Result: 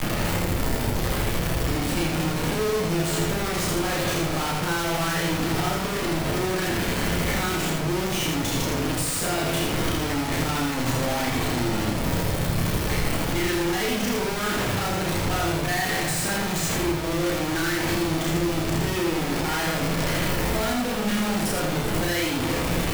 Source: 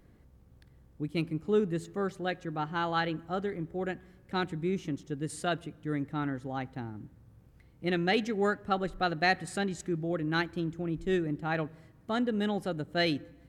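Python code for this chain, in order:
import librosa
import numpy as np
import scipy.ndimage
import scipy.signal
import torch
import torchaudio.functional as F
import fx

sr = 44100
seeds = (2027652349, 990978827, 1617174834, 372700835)

p1 = x + 0.5 * 10.0 ** (-26.5 / 20.0) * np.diff(np.sign(x), prepend=np.sign(x[:1]))
p2 = scipy.signal.sosfilt(scipy.signal.butter(2, 130.0, 'highpass', fs=sr, output='sos'), p1)
p3 = fx.peak_eq(p2, sr, hz=2200.0, db=6.5, octaves=1.5)
p4 = fx.over_compress(p3, sr, threshold_db=-38.0, ratio=-1.0)
p5 = p3 + (p4 * 10.0 ** (-1.5 / 20.0))
p6 = fx.leveller(p5, sr, passes=2)
p7 = fx.stretch_grains(p6, sr, factor=1.7, grain_ms=156.0)
p8 = fx.schmitt(p7, sr, flips_db=-34.5)
p9 = p8 + fx.echo_single(p8, sr, ms=81, db=-4.5, dry=0)
p10 = fx.room_shoebox(p9, sr, seeds[0], volume_m3=69.0, walls='mixed', distance_m=0.58)
p11 = fx.band_squash(p10, sr, depth_pct=40)
y = p11 * 10.0 ** (-5.0 / 20.0)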